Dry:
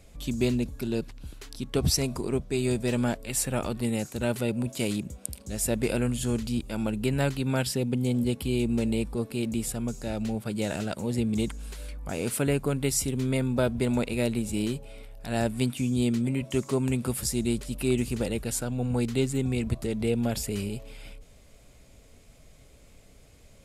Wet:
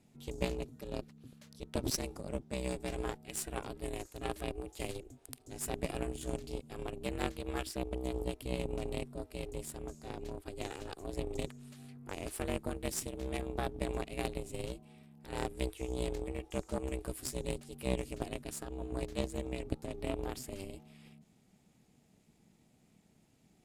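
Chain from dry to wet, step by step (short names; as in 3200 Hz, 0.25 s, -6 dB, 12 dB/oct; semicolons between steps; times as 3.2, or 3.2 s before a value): ring modulator 190 Hz; added harmonics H 2 -7 dB, 7 -24 dB, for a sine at -11 dBFS; gain -6 dB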